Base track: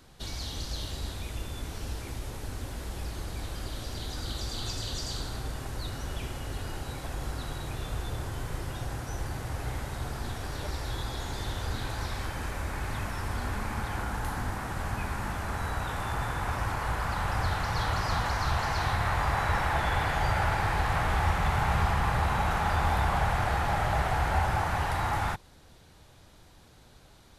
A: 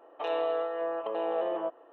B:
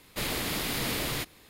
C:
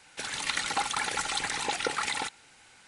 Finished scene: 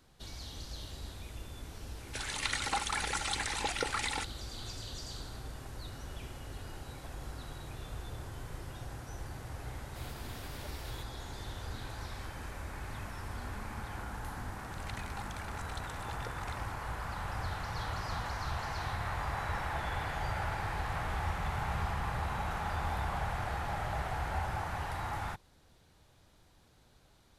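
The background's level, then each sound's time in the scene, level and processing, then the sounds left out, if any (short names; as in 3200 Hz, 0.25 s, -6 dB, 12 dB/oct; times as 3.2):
base track -8.5 dB
1.96 add C -4 dB
9.79 add B -18 dB + limiter -22.5 dBFS
14.4 add C -15.5 dB + Wiener smoothing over 15 samples
not used: A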